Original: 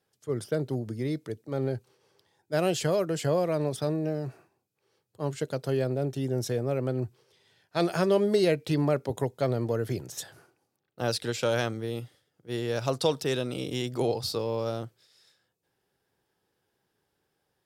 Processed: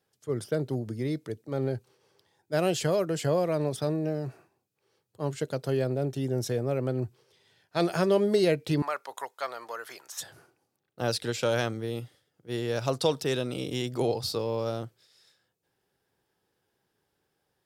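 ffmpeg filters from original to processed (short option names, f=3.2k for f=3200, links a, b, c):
-filter_complex "[0:a]asettb=1/sr,asplit=3[a][b][c];[a]atrim=end=8.824[d];[b]atrim=start=8.82:end=10.21,asetpts=PTS-STARTPTS,afade=t=in:d=0.004:c=qsin,afade=t=out:st=1.386:d=0.004:c=qsin,highpass=f=1.1k:t=q:w=2[e];[c]atrim=start=10.206[f];[d][e]acrossfade=d=0.004:c1=hsin:c2=qsin[g];[g][f]acrossfade=d=0.004:c1=qsin:c2=hsin"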